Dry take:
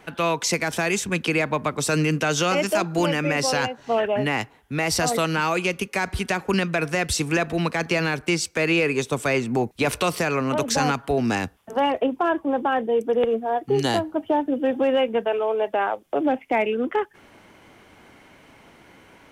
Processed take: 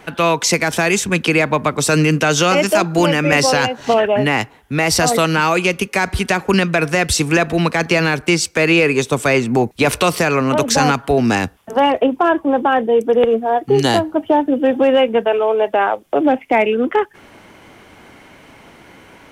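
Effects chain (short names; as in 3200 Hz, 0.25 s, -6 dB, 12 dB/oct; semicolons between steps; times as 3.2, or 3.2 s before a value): 3.32–3.94 three-band squash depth 100%; gain +7.5 dB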